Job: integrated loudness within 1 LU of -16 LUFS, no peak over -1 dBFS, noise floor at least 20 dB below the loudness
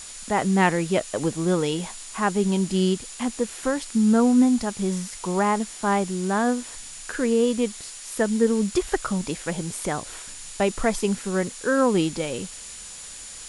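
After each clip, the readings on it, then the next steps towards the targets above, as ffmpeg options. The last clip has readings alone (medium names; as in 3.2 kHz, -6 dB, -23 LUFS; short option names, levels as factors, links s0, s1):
steady tone 7 kHz; tone level -43 dBFS; noise floor -40 dBFS; noise floor target -44 dBFS; loudness -24.0 LUFS; peak level -6.0 dBFS; loudness target -16.0 LUFS
-> -af "bandreject=f=7000:w=30"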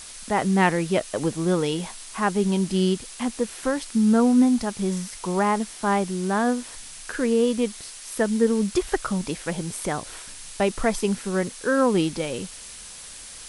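steady tone not found; noise floor -41 dBFS; noise floor target -44 dBFS
-> -af "afftdn=nr=6:nf=-41"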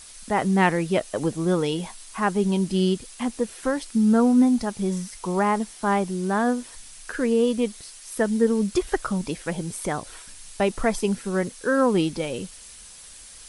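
noise floor -45 dBFS; loudness -24.0 LUFS; peak level -6.5 dBFS; loudness target -16.0 LUFS
-> -af "volume=2.51,alimiter=limit=0.891:level=0:latency=1"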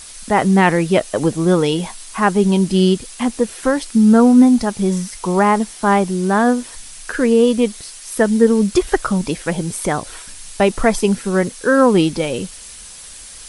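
loudness -16.0 LUFS; peak level -1.0 dBFS; noise floor -37 dBFS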